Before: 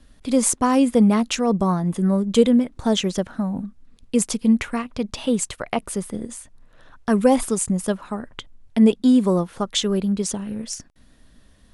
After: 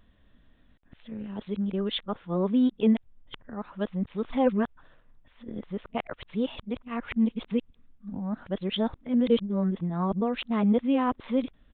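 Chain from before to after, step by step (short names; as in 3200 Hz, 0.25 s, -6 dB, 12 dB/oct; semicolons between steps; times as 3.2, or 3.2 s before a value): whole clip reversed; downsampling 8000 Hz; gain -7.5 dB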